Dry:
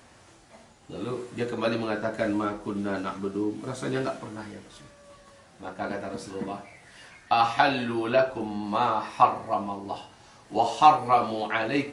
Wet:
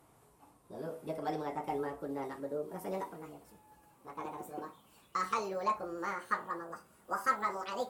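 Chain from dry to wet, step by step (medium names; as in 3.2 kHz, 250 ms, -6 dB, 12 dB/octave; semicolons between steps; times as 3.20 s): gliding tape speed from 125% -> 177%; high-order bell 3.2 kHz -10 dB 2.4 oct; trim -8.5 dB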